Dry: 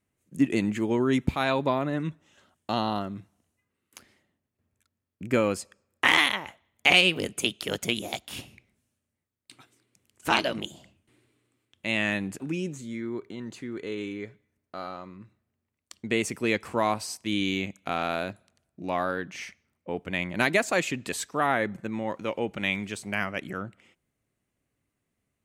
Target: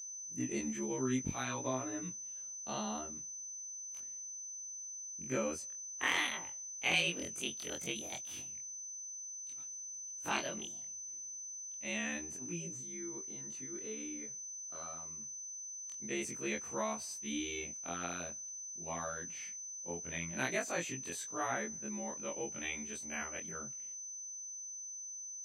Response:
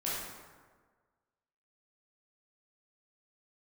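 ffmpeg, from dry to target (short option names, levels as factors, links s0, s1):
-af "afftfilt=real='re':imag='-im':win_size=2048:overlap=0.75,aeval=exprs='val(0)+0.0178*sin(2*PI*6100*n/s)':c=same,volume=0.398"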